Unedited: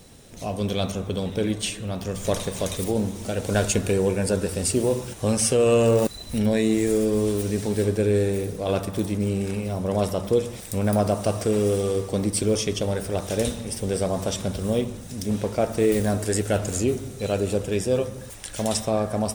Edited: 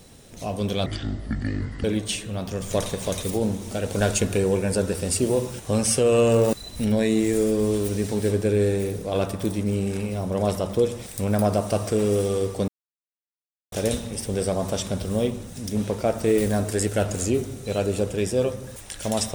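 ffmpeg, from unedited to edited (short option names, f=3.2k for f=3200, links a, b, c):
-filter_complex "[0:a]asplit=5[a][b][c][d][e];[a]atrim=end=0.864[f];[b]atrim=start=0.86:end=1.38,asetpts=PTS-STARTPTS,asetrate=23373,aresample=44100[g];[c]atrim=start=1.376:end=12.22,asetpts=PTS-STARTPTS,afade=t=out:st=10.84:d=0.004:c=hsin[h];[d]atrim=start=12.22:end=13.26,asetpts=PTS-STARTPTS,volume=0[i];[e]atrim=start=13.26,asetpts=PTS-STARTPTS,afade=t=in:d=0.004:c=hsin[j];[f][g]acrossfade=d=0.004:c1=hsin:c2=hsin[k];[h][i][j]concat=n=3:v=0:a=1[l];[k][l]acrossfade=d=0.004:c1=hsin:c2=hsin"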